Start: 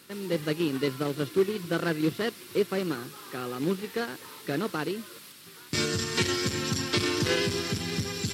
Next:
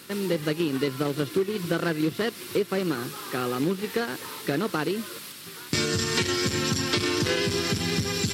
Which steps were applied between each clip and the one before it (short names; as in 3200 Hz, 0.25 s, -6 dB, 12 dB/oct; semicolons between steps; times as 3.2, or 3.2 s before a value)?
compressor 4:1, threshold -30 dBFS, peak gain reduction 10 dB; gain +7.5 dB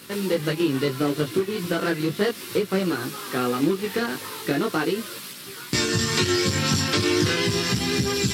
chorus voices 2, 0.37 Hz, delay 18 ms, depth 3.1 ms; in parallel at -12 dB: bit-crush 8-bit; on the sum: gain +4 dB